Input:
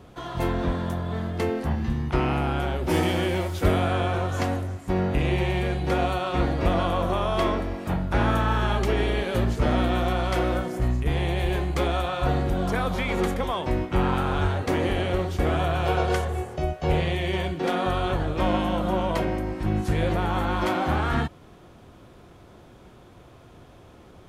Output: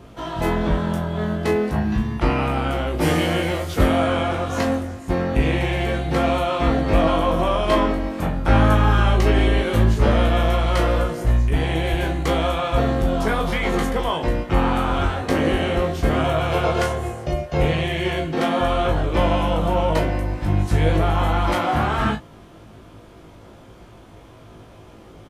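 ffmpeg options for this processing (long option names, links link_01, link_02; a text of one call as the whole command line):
ffmpeg -i in.wav -af "aecho=1:1:18|36:0.562|0.355,asetrate=42336,aresample=44100,volume=3.5dB" out.wav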